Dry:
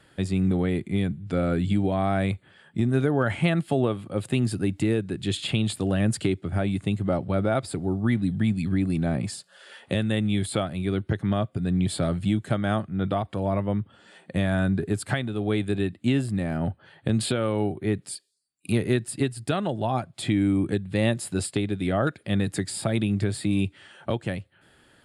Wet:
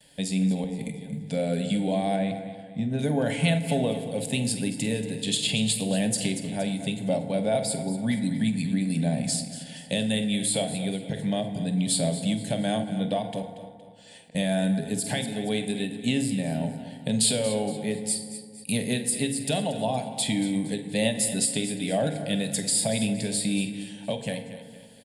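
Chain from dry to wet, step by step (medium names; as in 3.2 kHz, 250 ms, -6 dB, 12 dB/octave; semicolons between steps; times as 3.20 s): gate with hold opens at -53 dBFS; treble shelf 3 kHz +11 dB; 0.64–1.19 s: compressor with a negative ratio -32 dBFS, ratio -0.5; 2.16–2.99 s: tape spacing loss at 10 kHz 22 dB; 13.42–14.35 s: inverted gate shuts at -34 dBFS, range -31 dB; static phaser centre 340 Hz, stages 6; doubling 47 ms -14 dB; feedback delay 233 ms, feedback 42%, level -13.5 dB; FDN reverb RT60 1.7 s, low-frequency decay 1.35×, high-frequency decay 0.45×, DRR 7.5 dB; endings held to a fixed fall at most 140 dB/s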